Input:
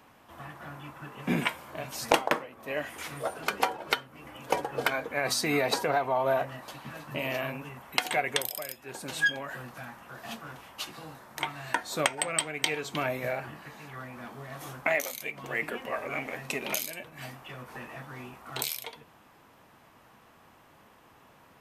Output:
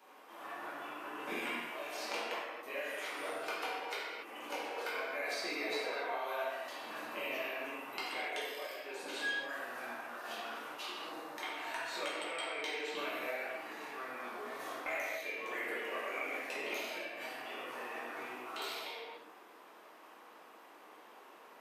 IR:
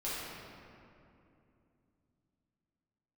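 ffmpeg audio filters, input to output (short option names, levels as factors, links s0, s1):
-filter_complex "[0:a]highpass=f=300:w=0.5412,highpass=f=300:w=1.3066,acrossover=split=1700|4800[s0][s1][s2];[s0]acompressor=threshold=0.00708:ratio=4[s3];[s1]acompressor=threshold=0.00891:ratio=4[s4];[s2]acompressor=threshold=0.00178:ratio=4[s5];[s3][s4][s5]amix=inputs=3:normalize=0[s6];[1:a]atrim=start_sample=2205,afade=t=out:st=0.35:d=0.01,atrim=end_sample=15876[s7];[s6][s7]afir=irnorm=-1:irlink=0,volume=0.794"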